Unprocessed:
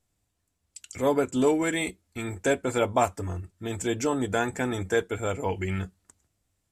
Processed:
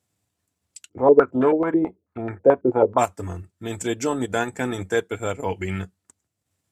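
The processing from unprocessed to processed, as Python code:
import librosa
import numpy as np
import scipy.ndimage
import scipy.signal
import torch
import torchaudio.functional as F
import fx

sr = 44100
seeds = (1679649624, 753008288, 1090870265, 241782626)

y = scipy.signal.sosfilt(scipy.signal.butter(4, 86.0, 'highpass', fs=sr, output='sos'), x)
y = fx.transient(y, sr, attack_db=-1, sustain_db=-8)
y = fx.filter_held_lowpass(y, sr, hz=9.2, low_hz=360.0, high_hz=1600.0, at=(0.88, 2.97), fade=0.02)
y = y * 10.0 ** (3.0 / 20.0)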